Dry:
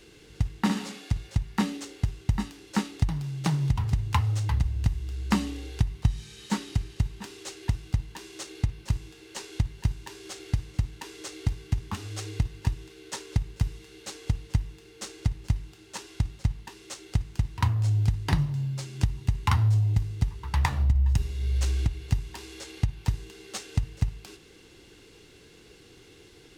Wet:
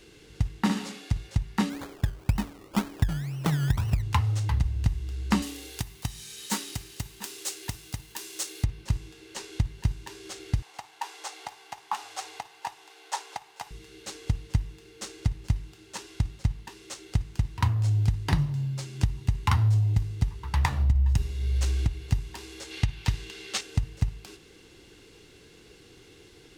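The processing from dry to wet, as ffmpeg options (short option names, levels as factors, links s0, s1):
-filter_complex "[0:a]asplit=3[s0][s1][s2];[s0]afade=t=out:st=1.69:d=0.02[s3];[s1]acrusher=samples=22:mix=1:aa=0.000001:lfo=1:lforange=13.2:lforate=2,afade=t=in:st=1.69:d=0.02,afade=t=out:st=4.01:d=0.02[s4];[s2]afade=t=in:st=4.01:d=0.02[s5];[s3][s4][s5]amix=inputs=3:normalize=0,asettb=1/sr,asplit=3[s6][s7][s8];[s6]atrim=end=5.424[s9];[s7]atrim=start=5.42:end=8.64,asetpts=PTS-STARTPTS,afade=t=in:d=0.004:c=qsin,afade=t=out:st=3.216:d=0.004:c=qsin,aemphasis=mode=production:type=bsi[s10];[s8]atrim=start=8.636[s11];[s9][s10]acrossfade=d=0.004:c1=hsin:c2=qsin[s12];[s12][s11]acrossfade=d=0.004:c1=qsin:c2=hsin,asettb=1/sr,asplit=3[s13][s14][s15];[s13]atrim=end=10.624[s16];[s14]atrim=start=10.62:end=13.71,asetpts=PTS-STARTPTS,afade=t=in:d=0.004:c=qsin,afade=t=out:st=3.086:d=0.004:c=qsin,highpass=f=810:t=q:w=5.1[s17];[s15]atrim=start=13.706[s18];[s16][s17]acrossfade=d=0.004:c1=hsin:c2=qsin[s19];[s19][s18]acrossfade=d=0.004:c1=qsin:c2=hsin,asettb=1/sr,asplit=3[s20][s21][s22];[s20]atrim=end=22.714[s23];[s21]atrim=start=22.71:end=23.61,asetpts=PTS-STARTPTS,afade=t=in:d=0.004:c=qsin,afade=t=out:st=0.896:d=0.004:c=qsin,equalizer=f=2900:w=0.51:g=9[s24];[s22]atrim=start=23.606[s25];[s23][s24]acrossfade=d=0.004:c1=hsin:c2=qsin[s26];[s26][s25]acrossfade=d=0.004:c1=qsin:c2=hsin"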